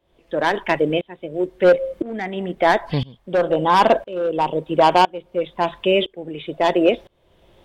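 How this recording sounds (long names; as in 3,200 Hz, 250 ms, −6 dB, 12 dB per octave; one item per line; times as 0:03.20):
tremolo saw up 0.99 Hz, depth 95%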